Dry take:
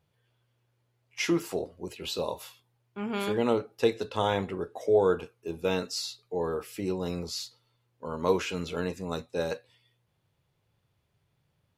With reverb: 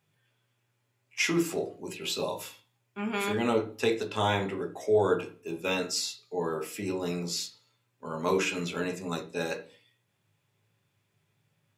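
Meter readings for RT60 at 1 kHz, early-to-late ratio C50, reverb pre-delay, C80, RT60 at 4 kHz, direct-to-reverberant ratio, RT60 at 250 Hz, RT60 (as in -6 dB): 0.40 s, 14.0 dB, 3 ms, 20.0 dB, 0.45 s, 5.0 dB, 0.50 s, 0.40 s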